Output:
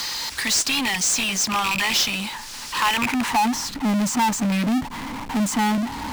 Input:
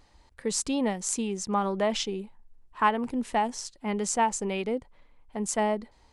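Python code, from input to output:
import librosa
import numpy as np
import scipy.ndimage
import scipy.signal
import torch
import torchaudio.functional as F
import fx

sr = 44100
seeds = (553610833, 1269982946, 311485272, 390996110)

y = fx.rattle_buzz(x, sr, strikes_db=-36.0, level_db=-23.0)
y = scipy.signal.sosfilt(scipy.signal.ellip(3, 1.0, 40, [280.0, 850.0], 'bandstop', fs=sr, output='sos'), y)
y = fx.filter_sweep_bandpass(y, sr, from_hz=5100.0, to_hz=390.0, start_s=2.82, end_s=3.48, q=1.7)
y = fx.power_curve(y, sr, exponent=0.35)
y = fx.band_squash(y, sr, depth_pct=40)
y = y * 10.0 ** (7.0 / 20.0)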